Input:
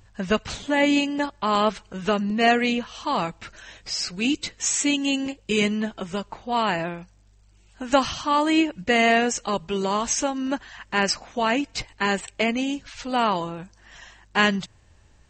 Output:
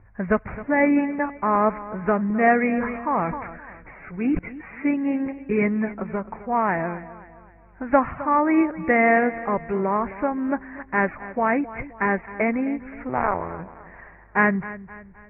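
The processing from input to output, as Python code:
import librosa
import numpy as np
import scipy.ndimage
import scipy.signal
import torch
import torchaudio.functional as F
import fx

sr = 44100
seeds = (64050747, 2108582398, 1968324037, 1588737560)

y = fx.cycle_switch(x, sr, every=2, mode='muted', at=(13.09, 13.59))
y = scipy.signal.sosfilt(scipy.signal.butter(16, 2300.0, 'lowpass', fs=sr, output='sos'), y)
y = fx.echo_feedback(y, sr, ms=262, feedback_pct=43, wet_db=-16)
y = fx.sustainer(y, sr, db_per_s=51.0, at=(2.76, 4.39))
y = y * librosa.db_to_amplitude(1.5)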